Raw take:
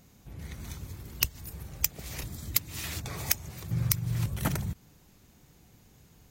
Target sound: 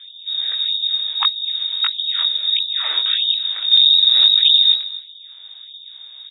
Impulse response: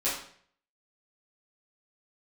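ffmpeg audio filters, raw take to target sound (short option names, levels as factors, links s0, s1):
-filter_complex "[0:a]lowshelf=f=530:t=q:w=1.5:g=7,aeval=exprs='0.794*(cos(1*acos(clip(val(0)/0.794,-1,1)))-cos(1*PI/2))+0.0282*(cos(5*acos(clip(val(0)/0.794,-1,1)))-cos(5*PI/2))+0.178*(cos(6*acos(clip(val(0)/0.794,-1,1)))-cos(6*PI/2))+0.0224*(cos(7*acos(clip(val(0)/0.794,-1,1)))-cos(7*PI/2))+0.0398*(cos(8*acos(clip(val(0)/0.794,-1,1)))-cos(8*PI/2))':c=same,flanger=delay=19:depth=2.7:speed=1.6,volume=6.68,asoftclip=hard,volume=0.15,asplit=2[s0][s1];[s1]adelay=250.7,volume=0.141,highshelf=f=4000:g=-5.64[s2];[s0][s2]amix=inputs=2:normalize=0,lowpass=f=3200:t=q:w=0.5098,lowpass=f=3200:t=q:w=0.6013,lowpass=f=3200:t=q:w=0.9,lowpass=f=3200:t=q:w=2.563,afreqshift=-3800,alimiter=level_in=8.41:limit=0.891:release=50:level=0:latency=1,afftfilt=real='re*gte(b*sr/1024,300*pow(3000/300,0.5+0.5*sin(2*PI*1.6*pts/sr)))':imag='im*gte(b*sr/1024,300*pow(3000/300,0.5+0.5*sin(2*PI*1.6*pts/sr)))':win_size=1024:overlap=0.75,volume=0.708"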